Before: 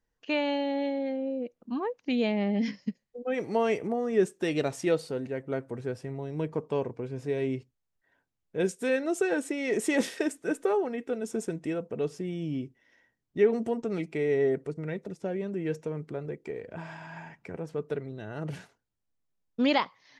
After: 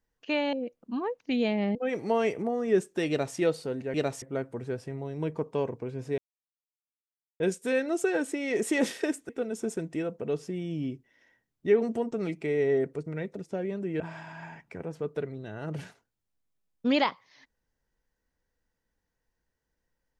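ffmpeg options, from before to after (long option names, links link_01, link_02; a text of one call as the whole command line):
ffmpeg -i in.wav -filter_complex "[0:a]asplit=9[link_01][link_02][link_03][link_04][link_05][link_06][link_07][link_08][link_09];[link_01]atrim=end=0.532[link_10];[link_02]atrim=start=1.318:end=2.542[link_11];[link_03]atrim=start=3.198:end=5.392[link_12];[link_04]atrim=start=4.538:end=4.822[link_13];[link_05]atrim=start=5.388:end=7.35,asetpts=PTS-STARTPTS,afade=type=out:start_time=1.958:duration=0.004:curve=hsin[link_14];[link_06]atrim=start=7.35:end=8.57,asetpts=PTS-STARTPTS,volume=0[link_15];[link_07]atrim=start=8.57:end=10.462,asetpts=PTS-STARTPTS,afade=type=in:duration=0.004:curve=hsin[link_16];[link_08]atrim=start=10.998:end=15.712[link_17];[link_09]atrim=start=16.738[link_18];[link_10][link_11]acrossfade=duration=0.004:curve1=hsin:curve2=hsin[link_19];[link_19][link_12]acrossfade=duration=0.004:curve1=hsin:curve2=hsin[link_20];[link_20][link_13]acrossfade=duration=0.004:curve1=hsin:curve2=hsin[link_21];[link_14][link_15][link_16]concat=n=3:v=0:a=1[link_22];[link_21][link_22]acrossfade=duration=0.004:curve1=hsin:curve2=hsin[link_23];[link_23][link_17]acrossfade=duration=0.004:curve1=hsin:curve2=hsin[link_24];[link_24][link_18]acrossfade=duration=0.004:curve1=hsin:curve2=hsin" out.wav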